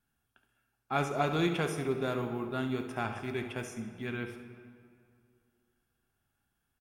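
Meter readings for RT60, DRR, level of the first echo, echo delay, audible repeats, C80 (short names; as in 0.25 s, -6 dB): 2.4 s, 5.5 dB, -12.5 dB, 70 ms, 1, 9.5 dB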